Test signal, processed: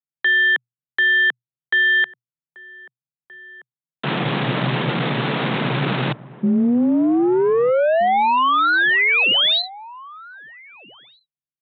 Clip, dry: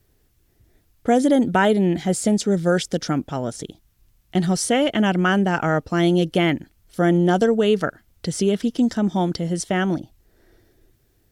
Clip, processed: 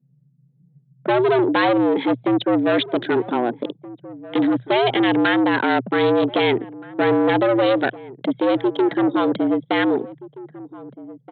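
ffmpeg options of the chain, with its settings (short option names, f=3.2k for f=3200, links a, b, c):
-filter_complex "[0:a]aresample=8000,asoftclip=type=tanh:threshold=-23dB,aresample=44100,anlmdn=1.58,asplit=2[a][b];[b]adelay=1574,volume=-18dB,highshelf=f=4k:g=-35.4[c];[a][c]amix=inputs=2:normalize=0,afreqshift=120,volume=8.5dB"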